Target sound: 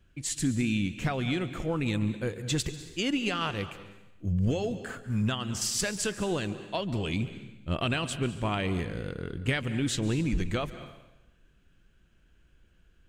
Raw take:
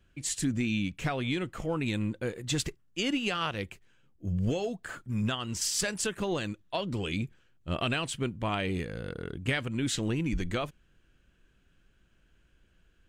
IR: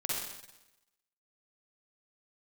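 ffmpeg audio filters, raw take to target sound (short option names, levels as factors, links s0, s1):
-filter_complex "[0:a]lowshelf=f=220:g=3.5,asplit=2[s0][s1];[1:a]atrim=start_sample=2205,adelay=142[s2];[s1][s2]afir=irnorm=-1:irlink=0,volume=0.141[s3];[s0][s3]amix=inputs=2:normalize=0"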